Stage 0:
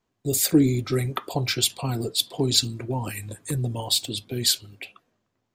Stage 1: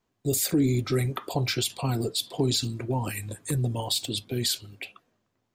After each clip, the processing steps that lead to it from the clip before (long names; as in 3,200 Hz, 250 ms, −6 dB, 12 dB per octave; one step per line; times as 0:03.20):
brickwall limiter −16 dBFS, peak gain reduction 10 dB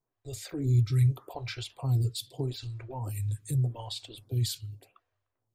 low shelf with overshoot 150 Hz +8.5 dB, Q 3
phaser with staggered stages 0.83 Hz
level −7.5 dB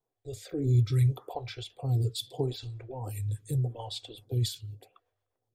rotating-speaker cabinet horn 0.75 Hz, later 8 Hz, at 0:02.80
hollow resonant body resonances 480/750/3,400 Hz, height 9 dB, ringing for 20 ms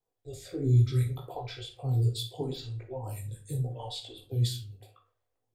multi-voice chorus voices 4, 1.4 Hz, delay 18 ms, depth 3 ms
on a send at −6 dB: convolution reverb RT60 0.35 s, pre-delay 27 ms
on the sum: level +1.5 dB